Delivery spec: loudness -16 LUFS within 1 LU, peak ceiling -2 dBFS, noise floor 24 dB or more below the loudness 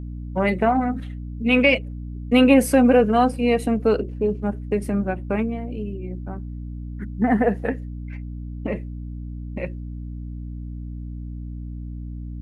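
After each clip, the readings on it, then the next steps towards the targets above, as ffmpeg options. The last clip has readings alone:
hum 60 Hz; harmonics up to 300 Hz; hum level -30 dBFS; loudness -21.0 LUFS; peak -3.5 dBFS; loudness target -16.0 LUFS
-> -af "bandreject=f=60:t=h:w=4,bandreject=f=120:t=h:w=4,bandreject=f=180:t=h:w=4,bandreject=f=240:t=h:w=4,bandreject=f=300:t=h:w=4"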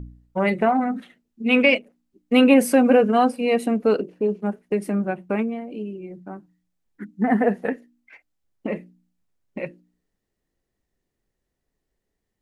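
hum none; loudness -21.0 LUFS; peak -4.0 dBFS; loudness target -16.0 LUFS
-> -af "volume=5dB,alimiter=limit=-2dB:level=0:latency=1"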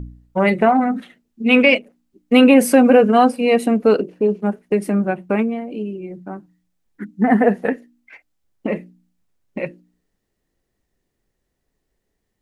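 loudness -16.5 LUFS; peak -2.0 dBFS; noise floor -75 dBFS

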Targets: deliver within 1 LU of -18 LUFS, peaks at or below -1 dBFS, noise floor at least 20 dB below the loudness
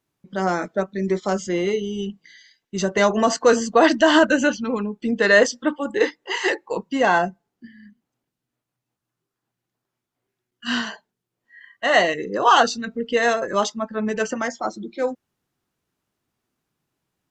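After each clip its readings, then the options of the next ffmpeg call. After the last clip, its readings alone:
loudness -20.5 LUFS; peak -2.0 dBFS; loudness target -18.0 LUFS
-> -af "volume=2.5dB,alimiter=limit=-1dB:level=0:latency=1"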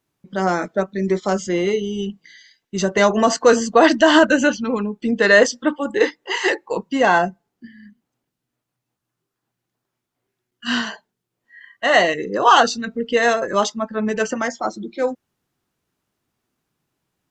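loudness -18.5 LUFS; peak -1.0 dBFS; noise floor -81 dBFS

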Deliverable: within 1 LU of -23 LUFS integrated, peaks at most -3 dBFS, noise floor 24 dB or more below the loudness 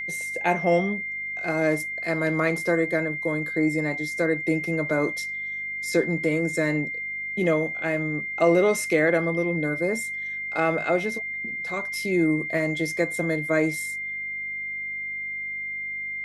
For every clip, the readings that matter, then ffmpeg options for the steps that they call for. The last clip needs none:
hum 50 Hz; harmonics up to 250 Hz; hum level -58 dBFS; steady tone 2100 Hz; tone level -29 dBFS; loudness -25.0 LUFS; peak -7.5 dBFS; loudness target -23.0 LUFS
-> -af "bandreject=f=50:t=h:w=4,bandreject=f=100:t=h:w=4,bandreject=f=150:t=h:w=4,bandreject=f=200:t=h:w=4,bandreject=f=250:t=h:w=4"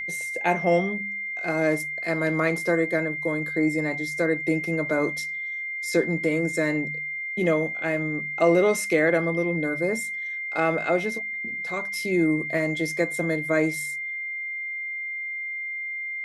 hum none; steady tone 2100 Hz; tone level -29 dBFS
-> -af "bandreject=f=2.1k:w=30"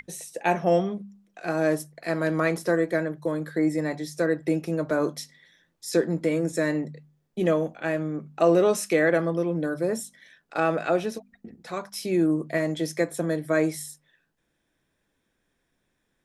steady tone none; loudness -26.0 LUFS; peak -8.0 dBFS; loudness target -23.0 LUFS
-> -af "volume=3dB"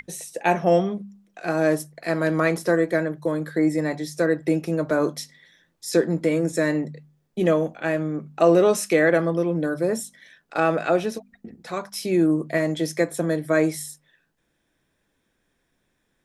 loudness -23.0 LUFS; peak -5.0 dBFS; noise floor -72 dBFS

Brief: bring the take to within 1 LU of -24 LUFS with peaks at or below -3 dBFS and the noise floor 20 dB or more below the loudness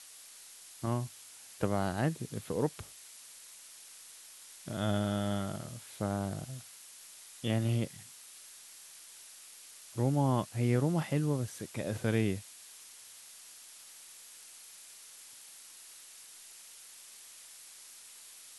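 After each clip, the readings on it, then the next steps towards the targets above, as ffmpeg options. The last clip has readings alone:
noise floor -53 dBFS; noise floor target -54 dBFS; loudness -34.0 LUFS; peak -16.0 dBFS; loudness target -24.0 LUFS
-> -af "afftdn=nr=6:nf=-53"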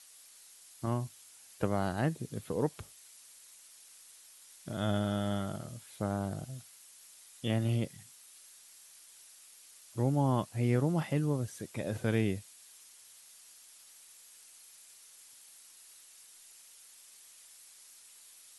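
noise floor -57 dBFS; loudness -34.0 LUFS; peak -16.0 dBFS; loudness target -24.0 LUFS
-> -af "volume=10dB"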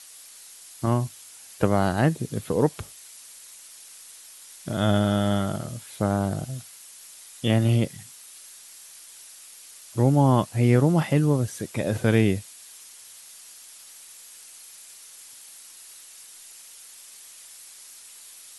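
loudness -24.0 LUFS; peak -6.0 dBFS; noise floor -47 dBFS

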